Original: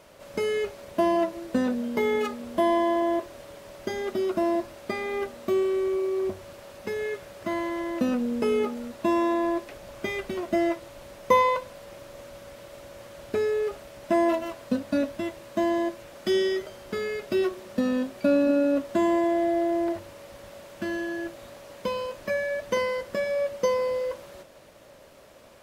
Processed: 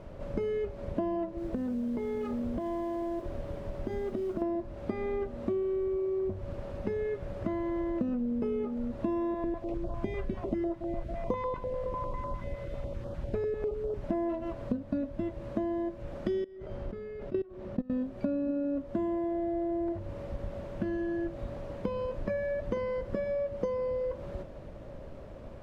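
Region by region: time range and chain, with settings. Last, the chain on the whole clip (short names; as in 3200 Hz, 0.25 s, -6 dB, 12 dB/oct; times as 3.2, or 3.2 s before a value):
1.37–4.42 modulation noise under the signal 14 dB + compressor, threshold -33 dBFS
9.34–14.04 delay with a stepping band-pass 0.277 s, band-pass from 510 Hz, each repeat 0.7 oct, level -7 dB + stepped notch 10 Hz 270–2200 Hz
16.44–17.9 high shelf 6700 Hz -11 dB + level quantiser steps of 23 dB
whole clip: tilt -4.5 dB/oct; compressor 6:1, threshold -30 dBFS; high shelf 7900 Hz -5 dB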